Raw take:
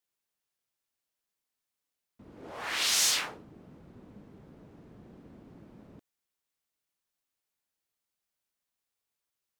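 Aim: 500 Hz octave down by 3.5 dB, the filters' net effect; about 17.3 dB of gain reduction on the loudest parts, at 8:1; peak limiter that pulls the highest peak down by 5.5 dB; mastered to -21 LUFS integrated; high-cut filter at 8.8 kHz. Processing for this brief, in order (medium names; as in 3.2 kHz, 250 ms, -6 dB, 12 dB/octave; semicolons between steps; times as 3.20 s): low-pass 8.8 kHz; peaking EQ 500 Hz -4.5 dB; compression 8:1, threshold -42 dBFS; trim +29.5 dB; peak limiter -8 dBFS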